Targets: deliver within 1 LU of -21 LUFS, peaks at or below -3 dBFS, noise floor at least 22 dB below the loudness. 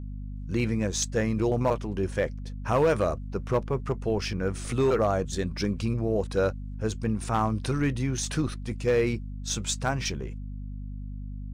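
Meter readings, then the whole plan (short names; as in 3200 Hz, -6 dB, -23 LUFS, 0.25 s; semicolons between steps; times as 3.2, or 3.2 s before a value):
clipped 0.5%; flat tops at -16.5 dBFS; hum 50 Hz; harmonics up to 250 Hz; hum level -34 dBFS; loudness -28.0 LUFS; peak -16.5 dBFS; loudness target -21.0 LUFS
-> clip repair -16.5 dBFS; notches 50/100/150/200/250 Hz; gain +7 dB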